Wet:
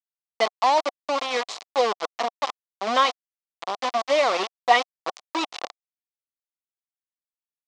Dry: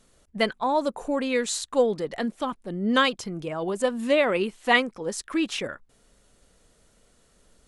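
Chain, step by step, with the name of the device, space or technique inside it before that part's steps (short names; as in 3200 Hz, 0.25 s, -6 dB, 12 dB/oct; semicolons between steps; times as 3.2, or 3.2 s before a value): 3.45–4.02 graphic EQ 250/500/4000/8000 Hz +7/-10/+5/-7 dB; hand-held game console (bit-crush 4-bit; speaker cabinet 490–5600 Hz, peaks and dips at 730 Hz +8 dB, 1100 Hz +6 dB, 1600 Hz -7 dB, 2700 Hz -3 dB)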